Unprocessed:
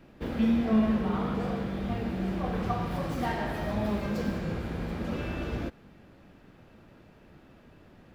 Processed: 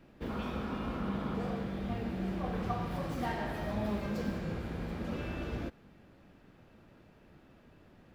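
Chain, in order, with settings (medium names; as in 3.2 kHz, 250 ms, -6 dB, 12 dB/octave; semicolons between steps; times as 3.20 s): spectral replace 0.32–1.30 s, 210–2200 Hz after; trim -4.5 dB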